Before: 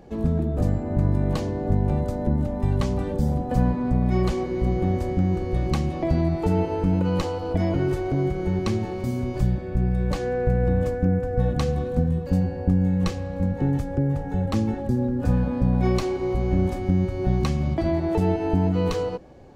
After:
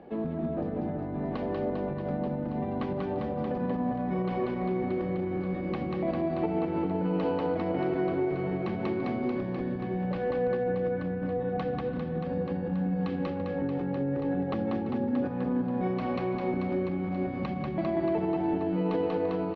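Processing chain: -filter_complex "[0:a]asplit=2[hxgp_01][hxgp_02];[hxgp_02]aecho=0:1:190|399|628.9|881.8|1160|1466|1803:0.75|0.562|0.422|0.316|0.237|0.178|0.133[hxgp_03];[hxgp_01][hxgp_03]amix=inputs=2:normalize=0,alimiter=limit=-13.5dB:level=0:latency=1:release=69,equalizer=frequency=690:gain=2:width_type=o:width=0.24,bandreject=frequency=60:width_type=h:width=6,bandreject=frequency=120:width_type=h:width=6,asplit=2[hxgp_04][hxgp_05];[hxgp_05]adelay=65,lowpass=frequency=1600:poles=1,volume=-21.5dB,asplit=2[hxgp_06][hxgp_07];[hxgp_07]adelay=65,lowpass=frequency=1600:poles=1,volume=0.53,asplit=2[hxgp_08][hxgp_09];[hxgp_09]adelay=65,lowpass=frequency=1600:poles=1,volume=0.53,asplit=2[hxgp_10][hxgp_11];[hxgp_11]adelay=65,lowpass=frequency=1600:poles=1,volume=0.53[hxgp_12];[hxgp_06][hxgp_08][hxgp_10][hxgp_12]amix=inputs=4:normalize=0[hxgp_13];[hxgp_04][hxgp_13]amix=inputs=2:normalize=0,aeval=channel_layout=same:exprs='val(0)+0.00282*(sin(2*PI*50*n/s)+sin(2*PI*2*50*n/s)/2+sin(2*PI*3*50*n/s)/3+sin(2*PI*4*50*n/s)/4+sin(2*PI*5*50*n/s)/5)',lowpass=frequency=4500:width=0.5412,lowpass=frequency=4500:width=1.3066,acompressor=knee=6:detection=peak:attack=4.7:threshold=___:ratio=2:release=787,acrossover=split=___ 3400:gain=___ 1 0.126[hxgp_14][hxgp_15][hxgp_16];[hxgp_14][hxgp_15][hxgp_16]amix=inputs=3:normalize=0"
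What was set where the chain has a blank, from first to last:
-24dB, 170, 0.0891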